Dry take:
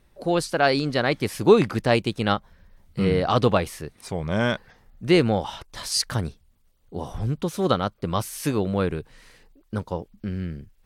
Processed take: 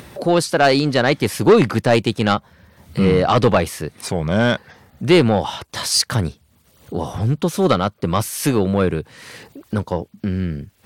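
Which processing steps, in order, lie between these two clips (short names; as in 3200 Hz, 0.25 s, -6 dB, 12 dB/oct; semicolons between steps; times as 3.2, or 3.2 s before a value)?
HPF 78 Hz 24 dB/oct; in parallel at -1.5 dB: upward compressor, threshold -24 dBFS; on the sum: soft clip -8 dBFS, distortion -13 dB; gain +2.5 dB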